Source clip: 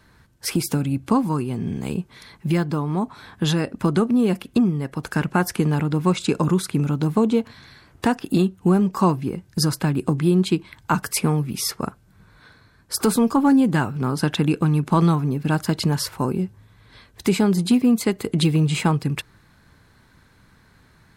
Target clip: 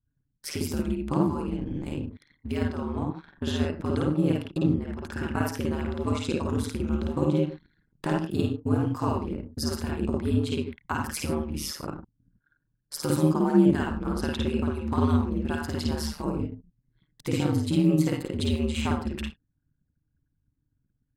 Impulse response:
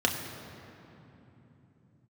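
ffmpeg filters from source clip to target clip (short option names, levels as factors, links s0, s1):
-filter_complex "[0:a]asplit=2[s0][s1];[1:a]atrim=start_sample=2205,afade=t=out:st=0.16:d=0.01,atrim=end_sample=7497,adelay=52[s2];[s1][s2]afir=irnorm=-1:irlink=0,volume=0.355[s3];[s0][s3]amix=inputs=2:normalize=0,anlmdn=2.51,aeval=exprs='val(0)*sin(2*PI*75*n/s)':c=same,volume=0.398"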